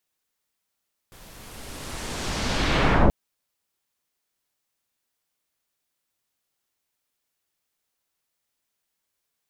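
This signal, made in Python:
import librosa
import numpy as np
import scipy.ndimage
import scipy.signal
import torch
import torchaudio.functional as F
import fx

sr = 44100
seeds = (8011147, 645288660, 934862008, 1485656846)

y = fx.riser_noise(sr, seeds[0], length_s=1.98, colour='pink', kind='lowpass', start_hz=16000.0, end_hz=490.0, q=1.0, swell_db=34.0, law='linear')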